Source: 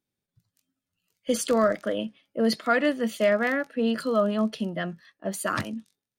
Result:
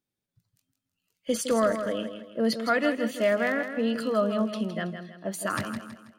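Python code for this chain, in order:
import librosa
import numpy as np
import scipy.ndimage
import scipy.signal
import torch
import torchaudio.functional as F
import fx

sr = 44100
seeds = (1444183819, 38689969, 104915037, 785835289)

y = fx.echo_feedback(x, sr, ms=162, feedback_pct=39, wet_db=-9.0)
y = F.gain(torch.from_numpy(y), -2.0).numpy()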